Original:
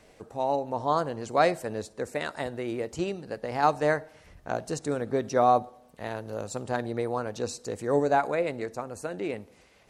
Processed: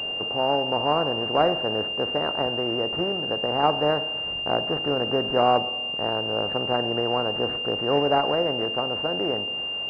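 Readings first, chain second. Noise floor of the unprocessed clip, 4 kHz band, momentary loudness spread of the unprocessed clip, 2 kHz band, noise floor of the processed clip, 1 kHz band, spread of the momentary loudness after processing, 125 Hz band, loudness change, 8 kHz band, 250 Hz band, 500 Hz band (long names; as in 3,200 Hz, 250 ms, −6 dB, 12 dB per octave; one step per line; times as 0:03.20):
−58 dBFS, can't be measured, 12 LU, +10.0 dB, −30 dBFS, +2.5 dB, 4 LU, +2.5 dB, +5.0 dB, below −20 dB, +3.5 dB, +3.5 dB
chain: compressor on every frequency bin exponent 0.6
switching amplifier with a slow clock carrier 2,800 Hz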